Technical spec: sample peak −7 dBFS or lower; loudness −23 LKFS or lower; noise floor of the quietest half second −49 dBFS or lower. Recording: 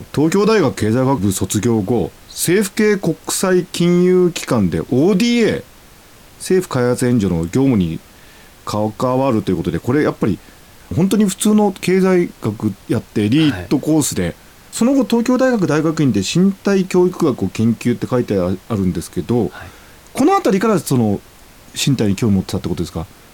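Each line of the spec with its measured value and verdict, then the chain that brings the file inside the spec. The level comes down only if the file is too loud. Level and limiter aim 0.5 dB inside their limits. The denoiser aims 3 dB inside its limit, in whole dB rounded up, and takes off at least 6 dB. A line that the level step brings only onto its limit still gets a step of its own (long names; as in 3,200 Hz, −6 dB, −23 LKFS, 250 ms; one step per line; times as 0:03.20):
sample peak −5.5 dBFS: out of spec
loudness −16.5 LKFS: out of spec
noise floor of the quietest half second −43 dBFS: out of spec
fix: level −7 dB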